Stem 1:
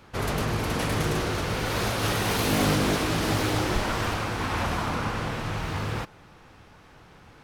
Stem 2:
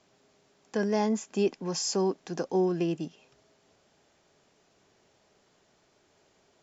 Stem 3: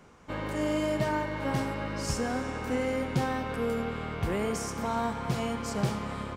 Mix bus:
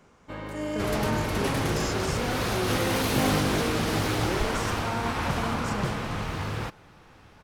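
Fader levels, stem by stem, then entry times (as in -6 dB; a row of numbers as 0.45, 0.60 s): -1.5, -7.0, -2.5 dB; 0.65, 0.00, 0.00 s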